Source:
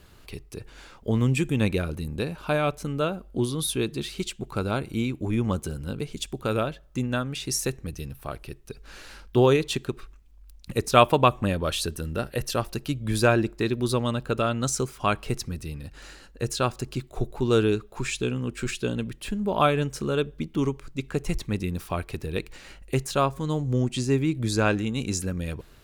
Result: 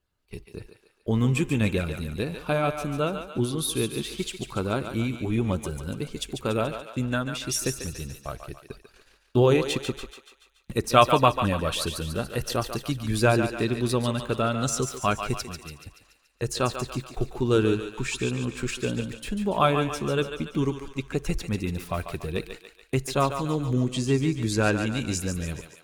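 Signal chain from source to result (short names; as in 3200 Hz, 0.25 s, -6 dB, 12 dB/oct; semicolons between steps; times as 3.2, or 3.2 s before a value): bin magnitudes rounded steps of 15 dB; 15.44–15.86 low shelf 320 Hz -8.5 dB; gate -41 dBFS, range -25 dB; thinning echo 0.143 s, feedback 55%, high-pass 540 Hz, level -7 dB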